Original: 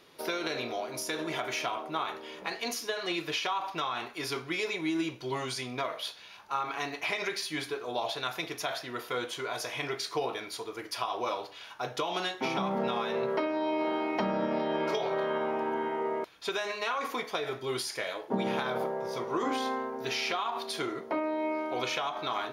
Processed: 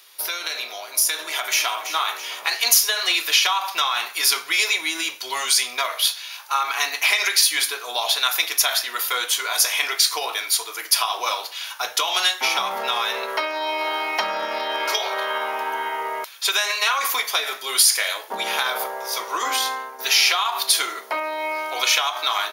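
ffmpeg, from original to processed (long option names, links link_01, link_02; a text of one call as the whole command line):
ffmpeg -i in.wav -filter_complex "[0:a]asplit=2[link_01][link_02];[link_02]afade=type=in:start_time=1.2:duration=0.01,afade=type=out:start_time=1.86:duration=0.01,aecho=0:1:330|660|990|1320|1650:0.251189|0.125594|0.0627972|0.0313986|0.0156993[link_03];[link_01][link_03]amix=inputs=2:normalize=0,asplit=2[link_04][link_05];[link_04]atrim=end=19.99,asetpts=PTS-STARTPTS,afade=type=out:start_time=19.54:duration=0.45:silence=0.446684[link_06];[link_05]atrim=start=19.99,asetpts=PTS-STARTPTS,afade=type=in:duration=0.004:curve=hsin:silence=0.446684[link_07];[link_06][link_07]concat=n=2:v=0:a=1,highpass=930,aemphasis=mode=production:type=75fm,dynaudnorm=framelen=220:gausssize=13:maxgain=6.5dB,volume=5dB" out.wav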